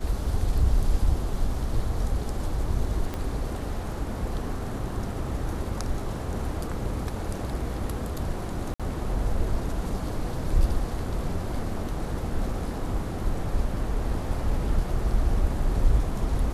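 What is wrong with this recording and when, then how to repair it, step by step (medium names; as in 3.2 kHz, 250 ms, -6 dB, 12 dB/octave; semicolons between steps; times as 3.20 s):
3.14 s: pop -18 dBFS
8.74–8.80 s: dropout 56 ms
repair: de-click; interpolate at 8.74 s, 56 ms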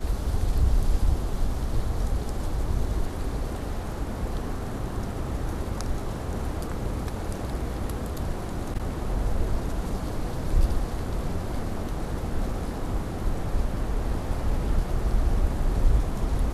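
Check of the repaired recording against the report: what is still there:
3.14 s: pop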